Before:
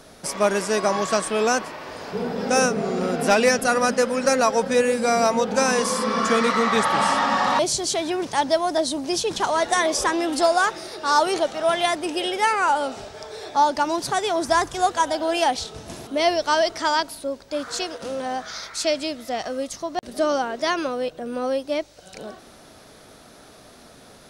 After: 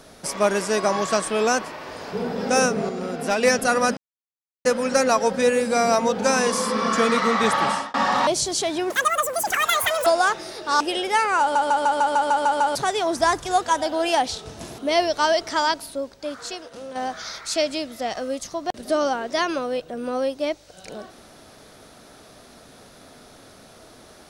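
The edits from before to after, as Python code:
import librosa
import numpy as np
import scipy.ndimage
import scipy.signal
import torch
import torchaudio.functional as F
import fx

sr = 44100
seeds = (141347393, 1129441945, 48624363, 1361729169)

y = fx.edit(x, sr, fx.clip_gain(start_s=2.89, length_s=0.54, db=-5.0),
    fx.insert_silence(at_s=3.97, length_s=0.68),
    fx.fade_out_span(start_s=6.95, length_s=0.31),
    fx.speed_span(start_s=8.22, length_s=2.21, speed=1.9),
    fx.cut(start_s=11.17, length_s=0.92),
    fx.stutter_over(start_s=12.69, slice_s=0.15, count=9),
    fx.fade_out_to(start_s=17.23, length_s=1.01, curve='qua', floor_db=-7.5), tone=tone)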